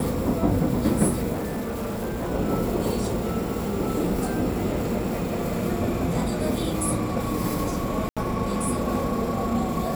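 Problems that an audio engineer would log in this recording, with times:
1.32–2.31 s: clipped -25 dBFS
8.09–8.17 s: dropout 76 ms

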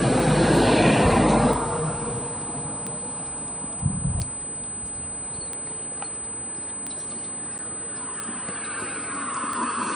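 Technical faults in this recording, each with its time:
tick 45 rpm
whine 8.1 kHz -30 dBFS
7.58–7.59 s: dropout 8.6 ms

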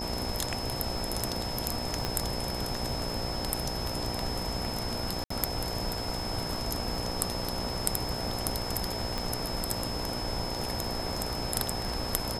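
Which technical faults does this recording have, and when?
buzz 60 Hz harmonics 16 -38 dBFS
crackle 39 per s -40 dBFS
whine 5.2 kHz -37 dBFS
2.05 s: pop -14 dBFS
5.24–5.30 s: dropout 64 ms
9.18 s: pop

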